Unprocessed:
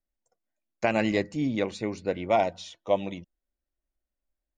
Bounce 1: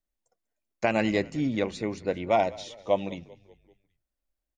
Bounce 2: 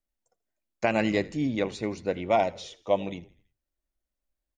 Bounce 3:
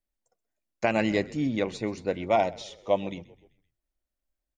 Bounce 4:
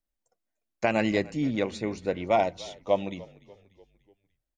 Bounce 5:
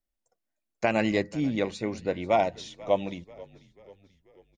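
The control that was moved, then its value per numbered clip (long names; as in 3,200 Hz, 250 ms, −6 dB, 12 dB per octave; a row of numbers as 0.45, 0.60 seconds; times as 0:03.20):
echo with shifted repeats, delay time: 194, 82, 129, 294, 488 milliseconds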